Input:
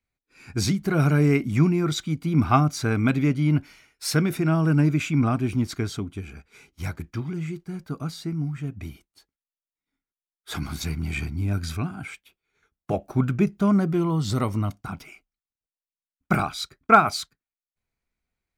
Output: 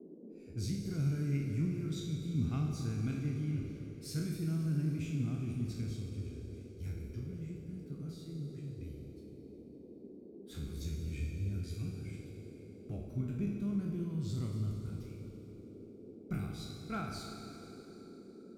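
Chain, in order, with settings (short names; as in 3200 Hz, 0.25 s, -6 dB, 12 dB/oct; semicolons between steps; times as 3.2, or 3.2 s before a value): spectral trails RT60 0.56 s; passive tone stack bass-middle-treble 10-0-1; Schroeder reverb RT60 3.2 s, combs from 29 ms, DRR 3.5 dB; band noise 180–440 Hz -52 dBFS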